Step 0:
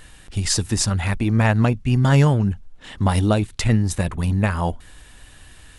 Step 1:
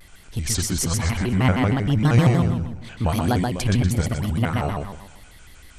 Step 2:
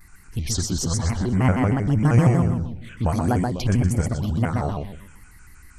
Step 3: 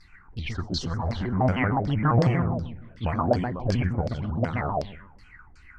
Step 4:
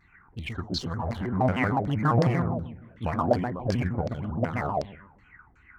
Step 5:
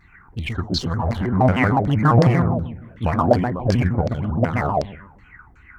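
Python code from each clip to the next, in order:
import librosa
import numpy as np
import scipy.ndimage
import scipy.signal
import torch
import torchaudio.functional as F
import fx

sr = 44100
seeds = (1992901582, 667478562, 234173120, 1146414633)

y1 = fx.echo_feedback(x, sr, ms=125, feedback_pct=40, wet_db=-3)
y1 = fx.vibrato_shape(y1, sr, shape='square', rate_hz=6.4, depth_cents=250.0)
y1 = F.gain(torch.from_numpy(y1), -3.5).numpy()
y2 = fx.env_phaser(y1, sr, low_hz=520.0, high_hz=3800.0, full_db=-17.0)
y3 = fx.filter_lfo_lowpass(y2, sr, shape='saw_down', hz=2.7, low_hz=540.0, high_hz=5100.0, q=7.2)
y3 = fx.attack_slew(y3, sr, db_per_s=390.0)
y3 = F.gain(torch.from_numpy(y3), -5.5).numpy()
y4 = fx.wiener(y3, sr, points=9)
y4 = fx.highpass(y4, sr, hz=110.0, slope=6)
y5 = fx.low_shelf(y4, sr, hz=89.0, db=5.0)
y5 = F.gain(torch.from_numpy(y5), 7.0).numpy()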